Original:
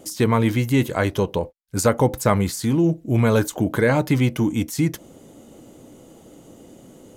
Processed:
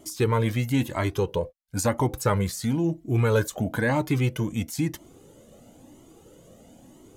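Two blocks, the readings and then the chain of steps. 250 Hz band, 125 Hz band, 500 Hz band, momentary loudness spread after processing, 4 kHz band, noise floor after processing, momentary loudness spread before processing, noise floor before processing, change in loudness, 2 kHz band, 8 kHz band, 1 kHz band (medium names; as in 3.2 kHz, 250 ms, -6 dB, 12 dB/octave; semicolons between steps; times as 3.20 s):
-6.5 dB, -4.0 dB, -5.5 dB, 6 LU, -4.5 dB, -53 dBFS, 6 LU, -48 dBFS, -5.0 dB, -4.0 dB, -4.5 dB, -4.5 dB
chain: Shepard-style flanger rising 1 Hz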